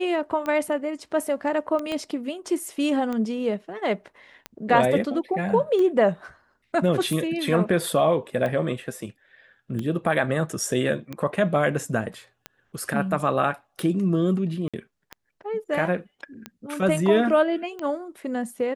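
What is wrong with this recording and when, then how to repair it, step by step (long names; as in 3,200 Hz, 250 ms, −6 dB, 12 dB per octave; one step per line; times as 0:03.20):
scratch tick 45 rpm −18 dBFS
0:01.92: click −17 dBFS
0:14.68–0:14.74: drop-out 56 ms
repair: click removal
repair the gap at 0:14.68, 56 ms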